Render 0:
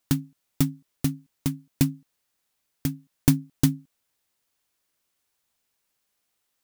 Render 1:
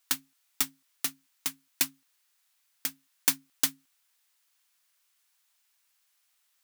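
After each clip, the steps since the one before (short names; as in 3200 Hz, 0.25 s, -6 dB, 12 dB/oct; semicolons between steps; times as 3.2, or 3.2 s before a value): HPF 1100 Hz 12 dB/oct; gain +4.5 dB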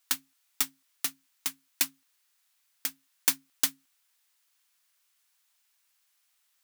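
low shelf 210 Hz -9 dB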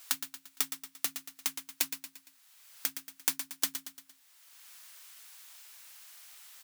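feedback echo 0.115 s, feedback 34%, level -10 dB; three-band squash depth 70%; gain -2 dB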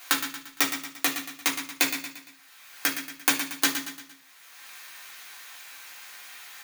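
reverb RT60 0.45 s, pre-delay 3 ms, DRR -4 dB; gain +3.5 dB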